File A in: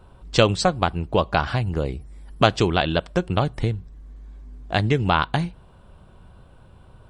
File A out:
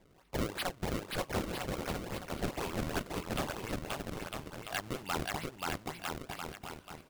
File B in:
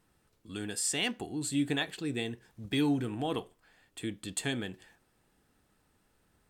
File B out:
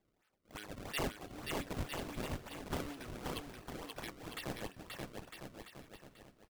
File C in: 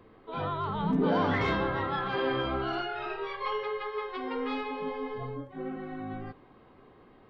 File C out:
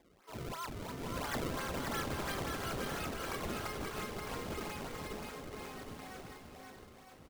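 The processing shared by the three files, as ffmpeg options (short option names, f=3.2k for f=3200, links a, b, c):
-filter_complex "[0:a]asplit=2[a][b];[b]acompressor=threshold=-36dB:ratio=6,volume=-0.5dB[c];[a][c]amix=inputs=2:normalize=0,bandpass=f=2.7k:t=q:w=1.3:csg=0,aemphasis=mode=reproduction:type=cd,acrusher=samples=30:mix=1:aa=0.000001:lfo=1:lforange=48:lforate=2.9,asplit=2[d][e];[e]aecho=0:1:530|954|1293|1565|1782:0.631|0.398|0.251|0.158|0.1[f];[d][f]amix=inputs=2:normalize=0,asoftclip=type=tanh:threshold=-24.5dB,volume=-1.5dB"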